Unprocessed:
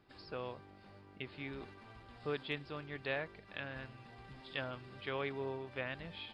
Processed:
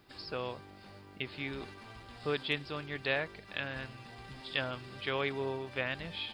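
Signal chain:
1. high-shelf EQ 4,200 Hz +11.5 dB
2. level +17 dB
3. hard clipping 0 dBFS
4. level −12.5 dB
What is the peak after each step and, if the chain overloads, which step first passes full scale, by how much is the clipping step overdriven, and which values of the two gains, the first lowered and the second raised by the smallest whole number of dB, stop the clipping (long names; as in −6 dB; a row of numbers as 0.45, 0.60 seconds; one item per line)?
−20.5, −3.5, −3.5, −16.0 dBFS
no step passes full scale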